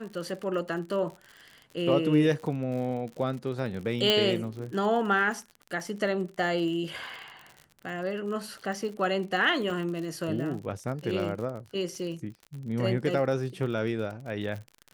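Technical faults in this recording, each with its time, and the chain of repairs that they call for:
crackle 50 per s -36 dBFS
4.10 s: pop -9 dBFS
9.70 s: dropout 3.3 ms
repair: de-click; interpolate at 9.70 s, 3.3 ms

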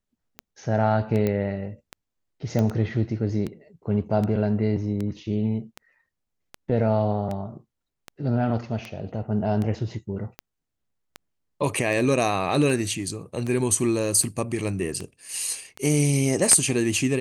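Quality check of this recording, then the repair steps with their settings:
tick 78 rpm -18 dBFS
1.27 s: pop -13 dBFS
2.59 s: pop -13 dBFS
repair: de-click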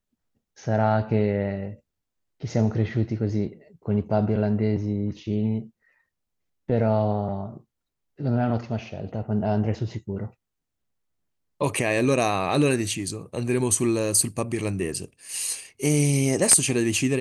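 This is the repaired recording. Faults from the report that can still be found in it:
nothing left

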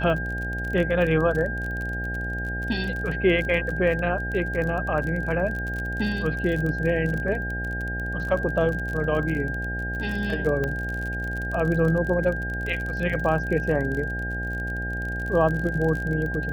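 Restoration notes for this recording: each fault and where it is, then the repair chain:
buzz 60 Hz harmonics 14 -31 dBFS
crackle 34 per s -29 dBFS
whine 1.6 kHz -30 dBFS
10.64 s: pop -16 dBFS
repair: de-click; de-hum 60 Hz, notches 14; band-stop 1.6 kHz, Q 30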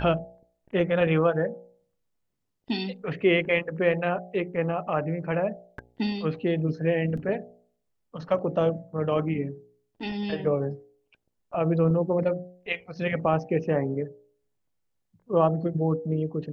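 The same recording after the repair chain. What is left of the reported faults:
10.64 s: pop

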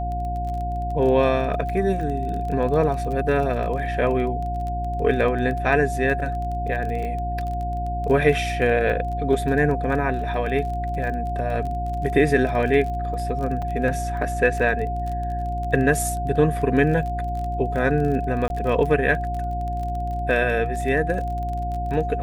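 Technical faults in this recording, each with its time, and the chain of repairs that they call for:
crackle 24 per s -29 dBFS
hum 60 Hz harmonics 6 -28 dBFS
whine 710 Hz -27 dBFS
13.62 s: dropout 4.4 ms
18.48–18.50 s: dropout 21 ms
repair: de-click; de-hum 60 Hz, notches 6; band-stop 710 Hz, Q 30; interpolate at 13.62 s, 4.4 ms; interpolate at 18.48 s, 21 ms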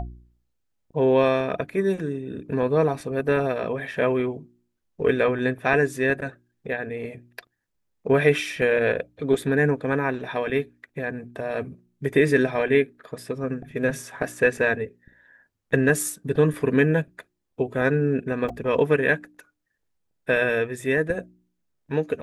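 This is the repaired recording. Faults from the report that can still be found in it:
nothing left

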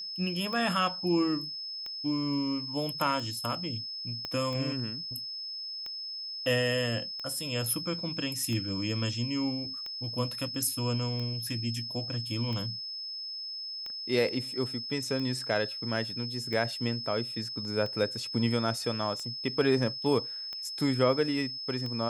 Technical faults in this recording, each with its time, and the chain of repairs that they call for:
tick 45 rpm -25 dBFS
whine 5.2 kHz -36 dBFS
4.25 s: pop -21 dBFS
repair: de-click; band-stop 5.2 kHz, Q 30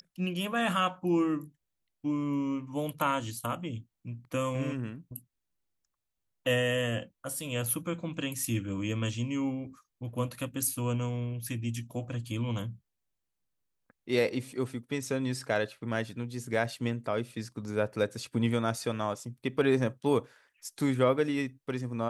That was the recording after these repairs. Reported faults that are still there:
4.25 s: pop

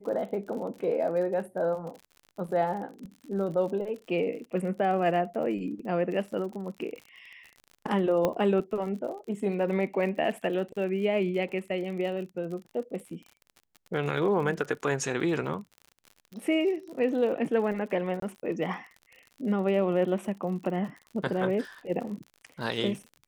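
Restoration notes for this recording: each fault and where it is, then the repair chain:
crackle 58 per s -38 dBFS
8.25 s: pop -13 dBFS
18.20–18.22 s: dropout 23 ms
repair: de-click; interpolate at 18.20 s, 23 ms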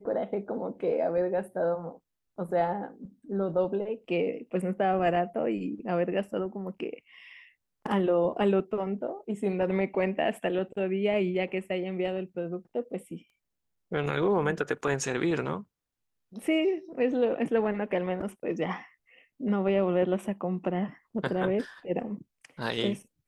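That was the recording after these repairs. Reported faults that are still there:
nothing left

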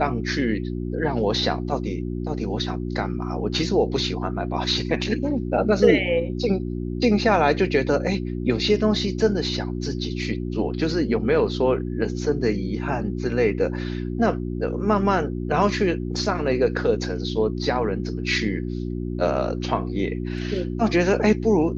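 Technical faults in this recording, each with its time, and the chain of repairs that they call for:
hum 60 Hz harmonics 6 -28 dBFS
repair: de-hum 60 Hz, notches 6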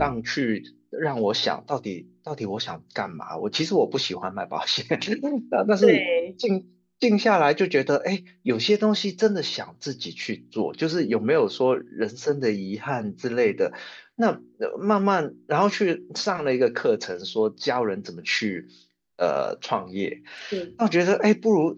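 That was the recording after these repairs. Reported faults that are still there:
nothing left

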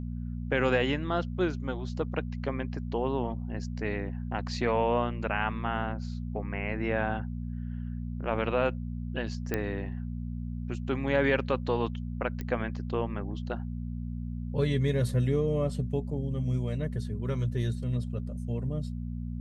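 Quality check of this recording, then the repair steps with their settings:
hum 60 Hz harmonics 4 -35 dBFS
9.54 s: pop -15 dBFS
12.41 s: pop -22 dBFS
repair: de-click; de-hum 60 Hz, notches 4

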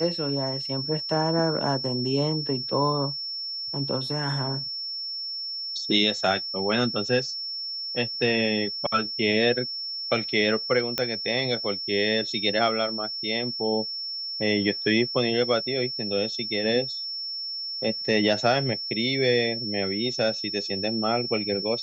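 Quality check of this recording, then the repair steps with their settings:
whine 5.4 kHz -30 dBFS
10.98 s: pop -10 dBFS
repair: de-click; band-stop 5.4 kHz, Q 30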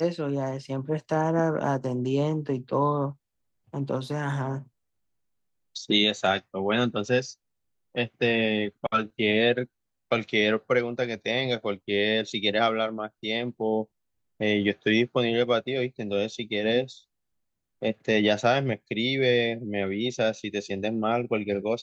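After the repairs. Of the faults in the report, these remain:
nothing left

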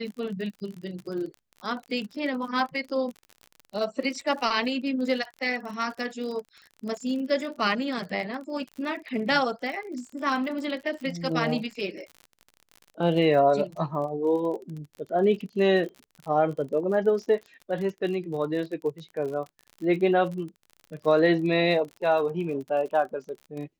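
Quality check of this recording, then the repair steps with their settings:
crackle 43 per s -35 dBFS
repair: de-click

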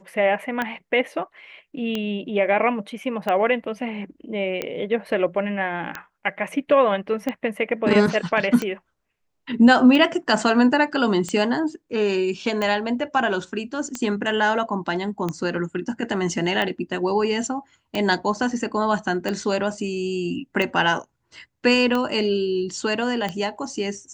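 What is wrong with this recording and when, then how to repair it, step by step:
tick 45 rpm -12 dBFS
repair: de-click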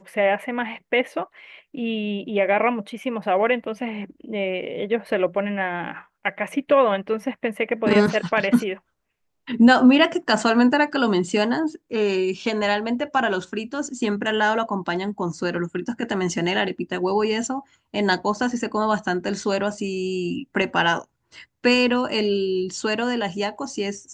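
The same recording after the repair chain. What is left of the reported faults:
nothing left

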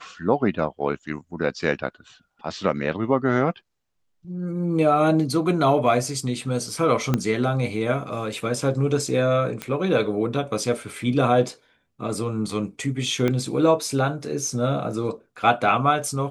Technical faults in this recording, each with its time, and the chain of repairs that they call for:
7.14 s: pop -8 dBFS
9.62 s: pop -13 dBFS
13.28 s: pop -11 dBFS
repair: de-click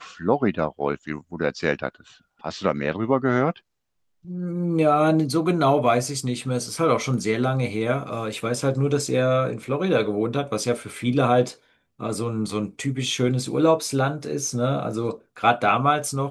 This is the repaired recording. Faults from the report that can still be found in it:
7.14 s: pop
13.28 s: pop

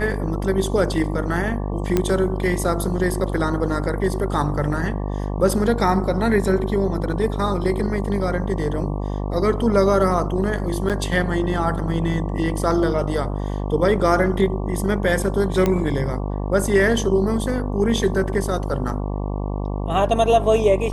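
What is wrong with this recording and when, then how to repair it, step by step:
buzz 50 Hz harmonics 23 -25 dBFS
1.97 s: pop -6 dBFS
10.89–10.90 s: dropout 7.4 ms
15.66 s: pop -7 dBFS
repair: de-click; de-hum 50 Hz, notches 23; interpolate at 10.89 s, 7.4 ms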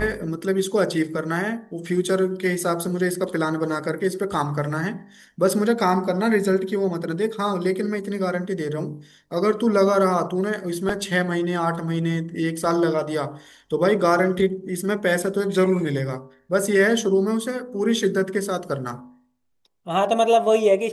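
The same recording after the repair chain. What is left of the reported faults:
nothing left

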